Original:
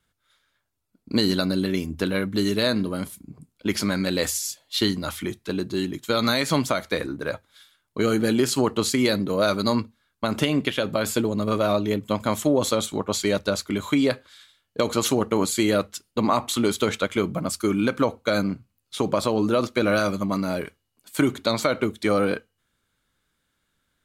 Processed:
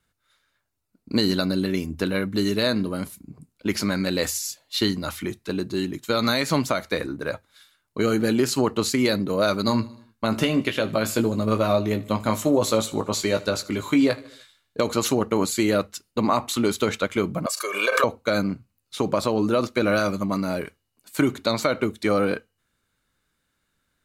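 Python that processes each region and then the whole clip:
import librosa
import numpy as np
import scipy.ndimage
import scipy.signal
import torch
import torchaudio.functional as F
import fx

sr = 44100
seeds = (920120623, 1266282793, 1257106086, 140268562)

y = fx.chain(x, sr, fx.doubler(ms=18.0, db=-7.5),
    fx.echo_feedback(ms=76, feedback_pct=54, wet_db=-20), at=(9.66, 14.8))
y = fx.chain(y, sr, fx.highpass(hz=500.0, slope=24),
    fx.comb(ms=1.8, depth=0.84),
    fx.pre_swell(db_per_s=62.0), at=(17.46, 18.04))
y = fx.dynamic_eq(y, sr, hz=9000.0, q=3.5, threshold_db=-50.0, ratio=4.0, max_db=-4)
y = fx.notch(y, sr, hz=3300.0, q=12.0)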